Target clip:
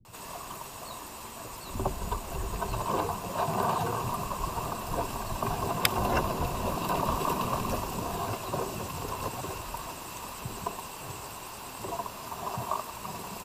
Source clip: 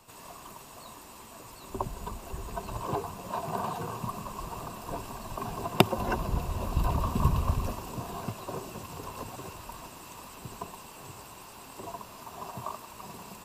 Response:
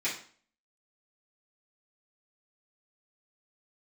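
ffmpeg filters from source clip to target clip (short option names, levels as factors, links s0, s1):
-filter_complex "[0:a]afftfilt=real='re*lt(hypot(re,im),0.2)':imag='im*lt(hypot(re,im),0.2)':win_size=1024:overlap=0.75,acrossover=split=240[s0][s1];[s1]adelay=50[s2];[s0][s2]amix=inputs=2:normalize=0,volume=2"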